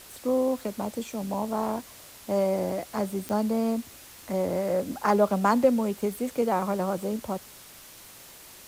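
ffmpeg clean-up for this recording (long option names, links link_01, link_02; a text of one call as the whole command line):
ffmpeg -i in.wav -af "adeclick=threshold=4,afftdn=noise_reduction=25:noise_floor=-48" out.wav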